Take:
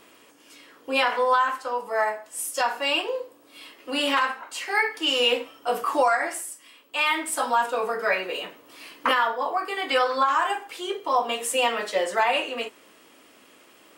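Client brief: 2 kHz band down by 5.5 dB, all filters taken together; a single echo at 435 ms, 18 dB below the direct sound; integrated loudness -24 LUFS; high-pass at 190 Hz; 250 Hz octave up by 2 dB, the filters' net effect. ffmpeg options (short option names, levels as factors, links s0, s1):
-af "highpass=190,equalizer=f=250:t=o:g=3.5,equalizer=f=2000:t=o:g=-7.5,aecho=1:1:435:0.126,volume=1.33"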